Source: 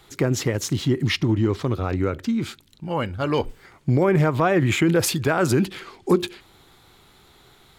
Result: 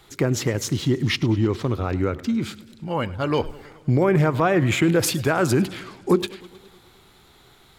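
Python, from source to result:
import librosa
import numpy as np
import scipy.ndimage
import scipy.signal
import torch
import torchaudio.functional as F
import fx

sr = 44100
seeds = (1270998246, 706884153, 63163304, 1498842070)

y = fx.echo_warbled(x, sr, ms=105, feedback_pct=65, rate_hz=2.8, cents=133, wet_db=-20)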